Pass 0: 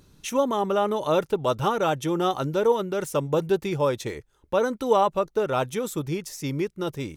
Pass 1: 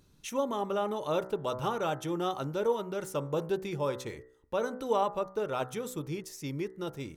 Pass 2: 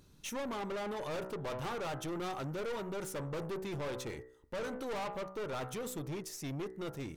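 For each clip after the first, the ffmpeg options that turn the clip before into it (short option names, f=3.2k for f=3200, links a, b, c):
-af "bandreject=f=63.15:t=h:w=4,bandreject=f=126.3:t=h:w=4,bandreject=f=189.45:t=h:w=4,bandreject=f=252.6:t=h:w=4,bandreject=f=315.75:t=h:w=4,bandreject=f=378.9:t=h:w=4,bandreject=f=442.05:t=h:w=4,bandreject=f=505.2:t=h:w=4,bandreject=f=568.35:t=h:w=4,bandreject=f=631.5:t=h:w=4,bandreject=f=694.65:t=h:w=4,bandreject=f=757.8:t=h:w=4,bandreject=f=820.95:t=h:w=4,bandreject=f=884.1:t=h:w=4,bandreject=f=947.25:t=h:w=4,bandreject=f=1.0104k:t=h:w=4,bandreject=f=1.07355k:t=h:w=4,bandreject=f=1.1367k:t=h:w=4,bandreject=f=1.19985k:t=h:w=4,bandreject=f=1.263k:t=h:w=4,bandreject=f=1.32615k:t=h:w=4,bandreject=f=1.3893k:t=h:w=4,bandreject=f=1.45245k:t=h:w=4,bandreject=f=1.5156k:t=h:w=4,bandreject=f=1.57875k:t=h:w=4,bandreject=f=1.6419k:t=h:w=4,bandreject=f=1.70505k:t=h:w=4,bandreject=f=1.7682k:t=h:w=4,bandreject=f=1.83135k:t=h:w=4,bandreject=f=1.8945k:t=h:w=4,bandreject=f=1.95765k:t=h:w=4,bandreject=f=2.0208k:t=h:w=4,volume=-7.5dB"
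-af "aeval=exprs='(tanh(79.4*val(0)+0.25)-tanh(0.25))/79.4':c=same,volume=2dB"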